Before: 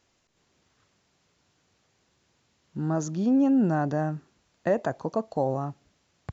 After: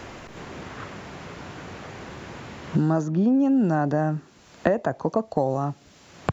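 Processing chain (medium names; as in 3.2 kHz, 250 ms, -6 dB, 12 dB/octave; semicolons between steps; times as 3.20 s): three bands compressed up and down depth 100%; trim +3 dB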